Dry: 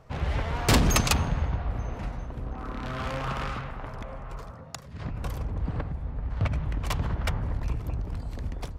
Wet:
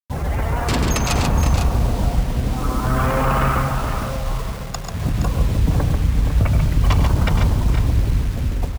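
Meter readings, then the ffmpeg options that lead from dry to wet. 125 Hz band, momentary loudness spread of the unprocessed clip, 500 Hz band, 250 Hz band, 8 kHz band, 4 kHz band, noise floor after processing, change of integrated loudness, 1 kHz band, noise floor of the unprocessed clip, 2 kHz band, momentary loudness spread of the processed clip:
+11.5 dB, 16 LU, +9.5 dB, +10.0 dB, +4.0 dB, +4.5 dB, −28 dBFS, +10.0 dB, +10.0 dB, −43 dBFS, +6.5 dB, 7 LU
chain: -af "afftdn=noise_reduction=14:noise_floor=-37,acrusher=bits=7:mix=0:aa=0.000001,alimiter=limit=-24dB:level=0:latency=1:release=12,aecho=1:1:102|140|470|501:0.224|0.531|0.316|0.316,dynaudnorm=framelen=220:gausssize=11:maxgain=4.5dB,volume=8.5dB"

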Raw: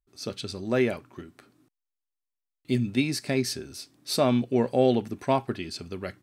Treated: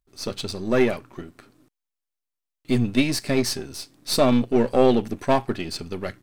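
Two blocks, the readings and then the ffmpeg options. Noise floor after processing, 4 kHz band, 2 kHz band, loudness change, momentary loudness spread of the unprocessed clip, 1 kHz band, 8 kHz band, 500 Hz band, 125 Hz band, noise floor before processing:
−85 dBFS, +4.5 dB, +4.5 dB, +4.5 dB, 15 LU, +4.5 dB, +5.0 dB, +4.5 dB, +2.5 dB, below −85 dBFS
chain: -af "aeval=exprs='if(lt(val(0),0),0.447*val(0),val(0))':channel_layout=same,volume=7.5dB"

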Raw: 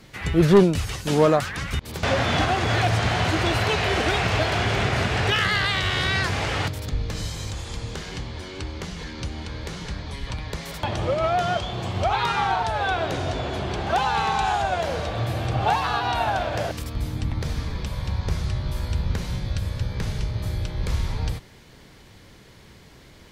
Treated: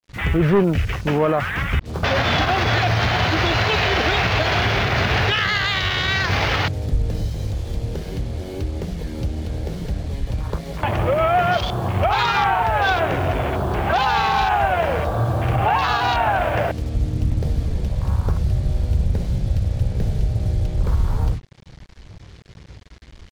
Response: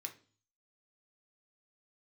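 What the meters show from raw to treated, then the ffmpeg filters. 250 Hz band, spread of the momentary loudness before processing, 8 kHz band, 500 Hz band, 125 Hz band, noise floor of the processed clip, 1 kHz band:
+1.5 dB, 12 LU, −2.5 dB, +2.0 dB, +4.5 dB, −42 dBFS, +4.5 dB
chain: -filter_complex "[0:a]afwtdn=0.02,lowpass=frequency=6500:width=0.5412,lowpass=frequency=6500:width=1.3066,equalizer=frequency=260:width=0.38:gain=-4,asplit=2[link_01][link_02];[link_02]acompressor=threshold=-41dB:ratio=5,volume=2dB[link_03];[link_01][link_03]amix=inputs=2:normalize=0,acrusher=bits=7:mix=0:aa=0.5,alimiter=level_in=15dB:limit=-1dB:release=50:level=0:latency=1,volume=-8.5dB"

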